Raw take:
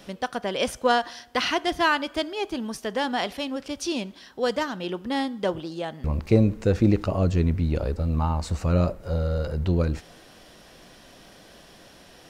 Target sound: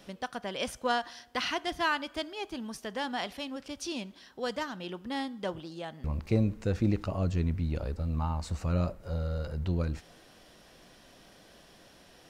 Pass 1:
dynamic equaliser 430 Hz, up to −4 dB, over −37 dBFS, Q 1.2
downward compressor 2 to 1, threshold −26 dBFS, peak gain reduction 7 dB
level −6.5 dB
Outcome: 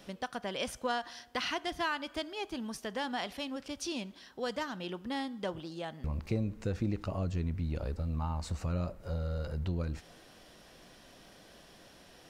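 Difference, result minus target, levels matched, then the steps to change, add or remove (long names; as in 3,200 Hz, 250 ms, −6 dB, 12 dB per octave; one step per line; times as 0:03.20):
downward compressor: peak gain reduction +7 dB
remove: downward compressor 2 to 1, threshold −26 dBFS, peak gain reduction 7 dB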